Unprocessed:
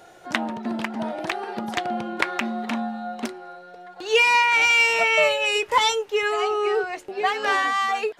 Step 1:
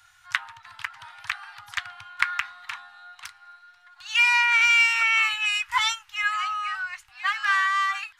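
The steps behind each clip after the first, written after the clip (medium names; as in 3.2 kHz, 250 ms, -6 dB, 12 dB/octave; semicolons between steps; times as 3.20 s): inverse Chebyshev band-stop 200–580 Hz, stop band 50 dB; dynamic bell 1.5 kHz, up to +6 dB, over -36 dBFS, Q 1.2; trim -3 dB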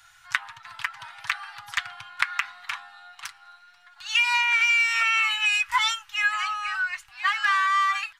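comb 6 ms, depth 47%; compression 6:1, threshold -21 dBFS, peak gain reduction 7.5 dB; trim +2.5 dB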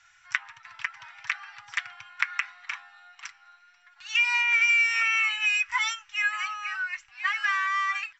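rippled Chebyshev low-pass 7.7 kHz, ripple 9 dB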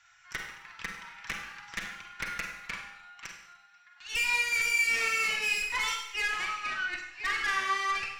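valve stage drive 27 dB, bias 0.6; Schroeder reverb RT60 0.77 s, combs from 33 ms, DRR 2.5 dB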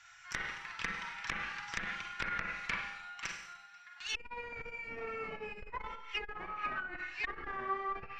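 low-pass that closes with the level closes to 710 Hz, closed at -29 dBFS; transformer saturation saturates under 320 Hz; trim +3.5 dB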